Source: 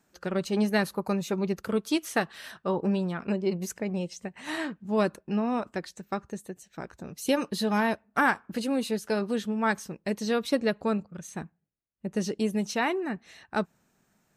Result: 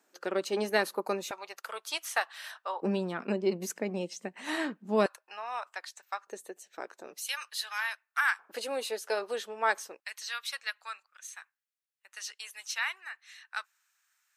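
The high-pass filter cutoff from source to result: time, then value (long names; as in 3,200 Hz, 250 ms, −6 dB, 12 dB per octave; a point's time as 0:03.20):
high-pass filter 24 dB per octave
300 Hz
from 0:01.31 720 Hz
from 0:02.82 220 Hz
from 0:05.06 820 Hz
from 0:06.27 380 Hz
from 0:07.19 1,300 Hz
from 0:08.39 460 Hz
from 0:10.00 1,300 Hz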